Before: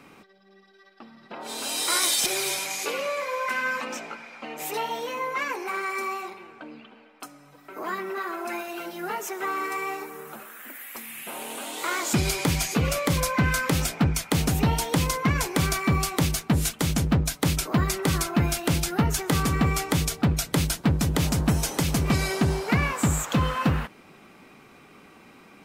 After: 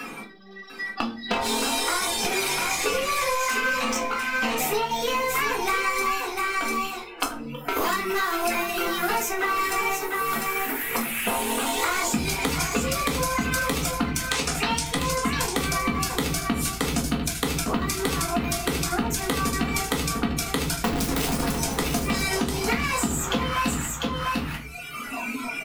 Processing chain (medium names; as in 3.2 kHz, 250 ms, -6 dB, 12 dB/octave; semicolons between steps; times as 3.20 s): 20.84–21.53 s: one-bit comparator; band-stop 570 Hz, Q 13; spectral noise reduction 18 dB; 14.29–14.95 s: frequency weighting ITU-R 468; reverb removal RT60 1 s; peaking EQ 96 Hz -14.5 dB 0.73 oct; waveshaping leveller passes 1; compression, threshold -26 dBFS, peak gain reduction 13 dB; delay 698 ms -8.5 dB; reverberation RT60 0.40 s, pre-delay 4 ms, DRR -1.5 dB; three bands compressed up and down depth 100%